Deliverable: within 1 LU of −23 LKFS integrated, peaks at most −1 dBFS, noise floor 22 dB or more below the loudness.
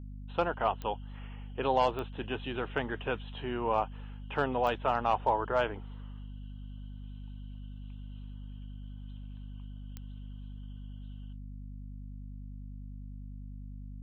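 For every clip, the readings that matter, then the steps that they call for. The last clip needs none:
number of clicks 4; mains hum 50 Hz; hum harmonics up to 250 Hz; level of the hum −41 dBFS; integrated loudness −32.5 LKFS; sample peak −16.0 dBFS; target loudness −23.0 LKFS
→ click removal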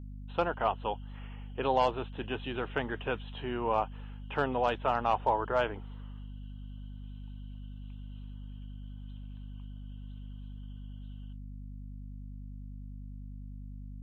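number of clicks 0; mains hum 50 Hz; hum harmonics up to 250 Hz; level of the hum −41 dBFS
→ mains-hum notches 50/100/150/200/250 Hz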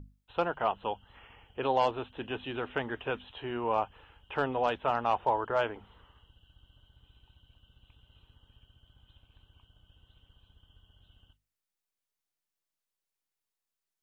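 mains hum none found; integrated loudness −32.5 LKFS; sample peak −16.0 dBFS; target loudness −23.0 LKFS
→ level +9.5 dB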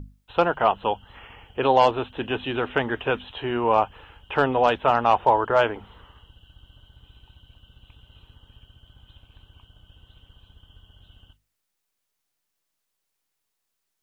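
integrated loudness −23.0 LKFS; sample peak −6.5 dBFS; background noise floor −79 dBFS

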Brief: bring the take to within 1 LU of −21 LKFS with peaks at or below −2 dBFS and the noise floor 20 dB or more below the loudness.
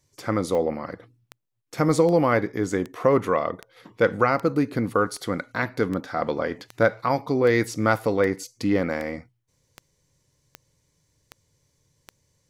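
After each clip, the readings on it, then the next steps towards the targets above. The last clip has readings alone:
number of clicks 16; integrated loudness −24.0 LKFS; sample peak −6.0 dBFS; target loudness −21.0 LKFS
→ click removal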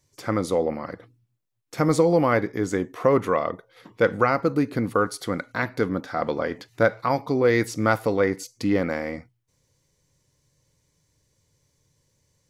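number of clicks 0; integrated loudness −24.0 LKFS; sample peak −6.0 dBFS; target loudness −21.0 LKFS
→ level +3 dB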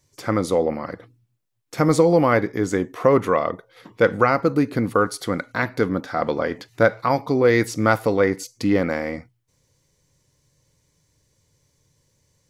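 integrated loudness −21.0 LKFS; sample peak −3.0 dBFS; background noise floor −68 dBFS

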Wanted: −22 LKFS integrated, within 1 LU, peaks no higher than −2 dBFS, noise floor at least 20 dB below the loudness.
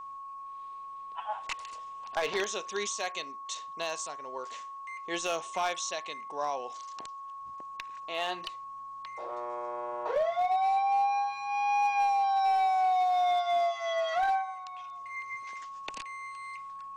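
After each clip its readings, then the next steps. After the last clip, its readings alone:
share of clipped samples 0.9%; peaks flattened at −22.5 dBFS; interfering tone 1,100 Hz; level of the tone −40 dBFS; integrated loudness −31.5 LKFS; sample peak −22.5 dBFS; target loudness −22.0 LKFS
→ clipped peaks rebuilt −22.5 dBFS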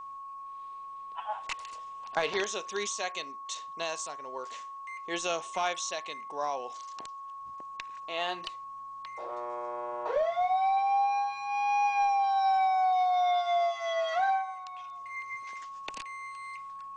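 share of clipped samples 0.0%; interfering tone 1,100 Hz; level of the tone −40 dBFS
→ notch filter 1,100 Hz, Q 30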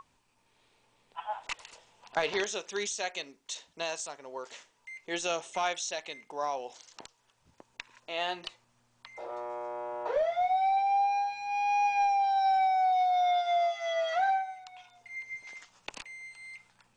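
interfering tone none found; integrated loudness −30.5 LKFS; sample peak −15.0 dBFS; target loudness −22.0 LKFS
→ level +8.5 dB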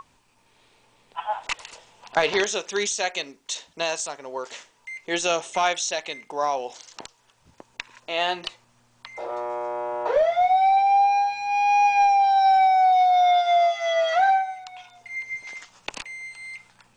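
integrated loudness −22.0 LKFS; sample peak −6.5 dBFS; background noise floor −62 dBFS

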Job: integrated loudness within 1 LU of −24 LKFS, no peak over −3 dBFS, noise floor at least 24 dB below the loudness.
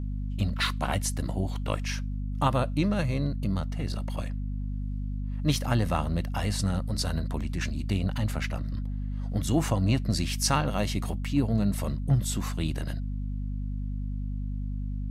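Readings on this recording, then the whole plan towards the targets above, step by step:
mains hum 50 Hz; hum harmonics up to 250 Hz; level of the hum −29 dBFS; integrated loudness −29.5 LKFS; sample peak −9.5 dBFS; target loudness −24.0 LKFS
→ hum removal 50 Hz, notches 5
level +5.5 dB

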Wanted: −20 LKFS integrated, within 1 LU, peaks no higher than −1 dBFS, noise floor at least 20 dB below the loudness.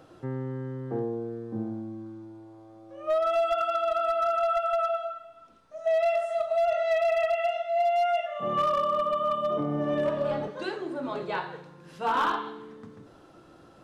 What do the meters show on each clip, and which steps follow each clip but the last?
share of clipped samples 1.3%; peaks flattened at −20.0 dBFS; integrated loudness −28.0 LKFS; sample peak −20.0 dBFS; target loudness −20.0 LKFS
→ clipped peaks rebuilt −20 dBFS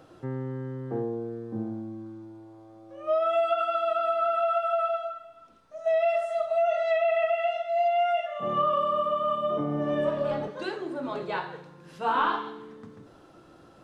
share of clipped samples 0.0%; integrated loudness −27.5 LKFS; sample peak −14.0 dBFS; target loudness −20.0 LKFS
→ level +7.5 dB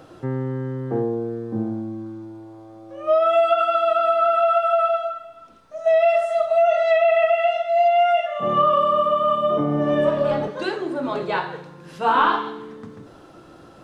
integrated loudness −20.0 LKFS; sample peak −6.5 dBFS; background noise floor −46 dBFS

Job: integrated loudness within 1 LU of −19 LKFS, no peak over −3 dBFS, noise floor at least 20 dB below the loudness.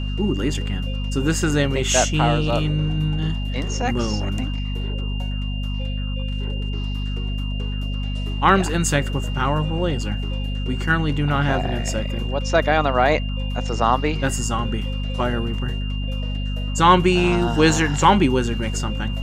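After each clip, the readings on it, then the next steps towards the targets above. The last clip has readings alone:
mains hum 50 Hz; hum harmonics up to 250 Hz; level of the hum −22 dBFS; interfering tone 2,800 Hz; level of the tone −35 dBFS; integrated loudness −21.5 LKFS; sample peak −2.5 dBFS; target loudness −19.0 LKFS
→ hum removal 50 Hz, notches 5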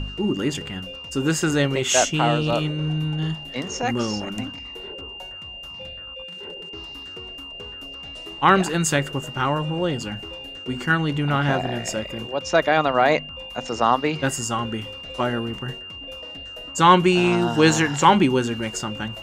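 mains hum none found; interfering tone 2,800 Hz; level of the tone −35 dBFS
→ notch filter 2,800 Hz, Q 30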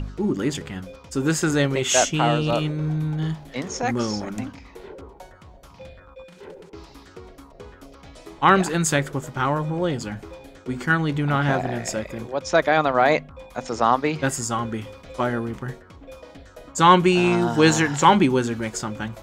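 interfering tone none found; integrated loudness −21.5 LKFS; sample peak −3.0 dBFS; target loudness −19.0 LKFS
→ level +2.5 dB
brickwall limiter −3 dBFS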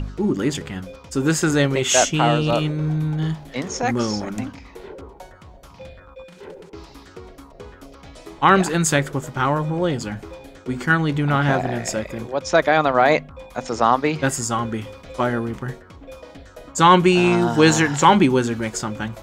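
integrated loudness −19.5 LKFS; sample peak −3.0 dBFS; background noise floor −46 dBFS

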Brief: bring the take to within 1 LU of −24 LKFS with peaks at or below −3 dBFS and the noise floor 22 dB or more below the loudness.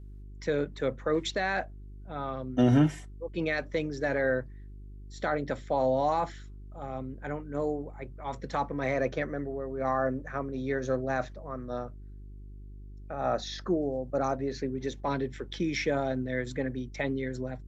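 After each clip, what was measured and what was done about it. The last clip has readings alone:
mains hum 50 Hz; hum harmonics up to 400 Hz; level of the hum −42 dBFS; integrated loudness −31.0 LKFS; sample peak −13.0 dBFS; target loudness −24.0 LKFS
→ hum removal 50 Hz, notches 8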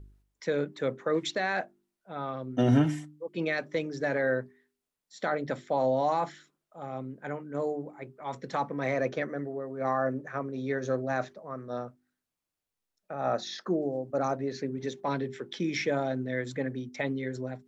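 mains hum none found; integrated loudness −31.5 LKFS; sample peak −12.5 dBFS; target loudness −24.0 LKFS
→ level +7.5 dB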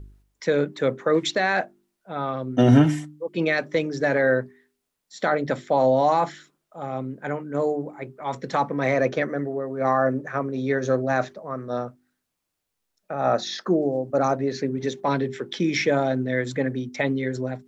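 integrated loudness −24.0 LKFS; sample peak −5.0 dBFS; background noise floor −80 dBFS

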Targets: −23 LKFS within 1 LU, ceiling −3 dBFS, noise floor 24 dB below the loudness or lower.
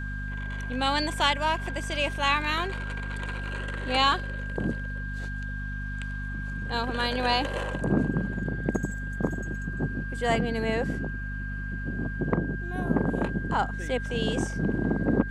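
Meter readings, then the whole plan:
mains hum 50 Hz; hum harmonics up to 250 Hz; level of the hum −31 dBFS; interfering tone 1,600 Hz; level of the tone −37 dBFS; integrated loudness −29.0 LKFS; sample peak −9.5 dBFS; target loudness −23.0 LKFS
→ mains-hum notches 50/100/150/200/250 Hz
notch filter 1,600 Hz, Q 30
level +6 dB

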